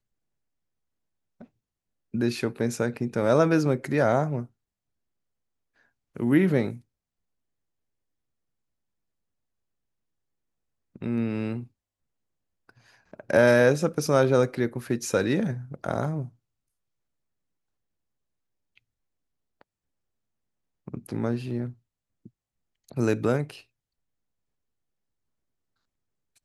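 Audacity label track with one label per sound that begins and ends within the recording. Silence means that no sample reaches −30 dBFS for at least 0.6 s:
2.140000	4.420000	sound
6.170000	6.720000	sound
11.020000	11.600000	sound
13.140000	16.250000	sound
20.880000	21.690000	sound
22.920000	23.500000	sound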